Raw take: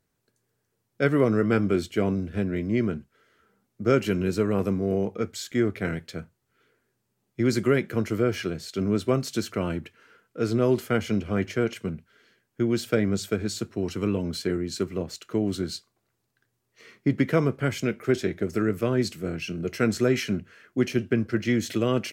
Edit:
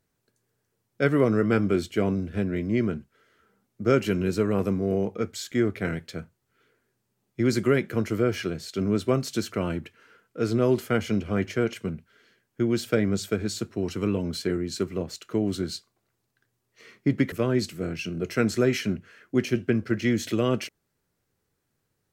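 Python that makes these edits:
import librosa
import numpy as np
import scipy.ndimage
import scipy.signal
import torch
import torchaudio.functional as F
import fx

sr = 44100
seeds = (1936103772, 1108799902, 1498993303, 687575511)

y = fx.edit(x, sr, fx.cut(start_s=17.32, length_s=1.43), tone=tone)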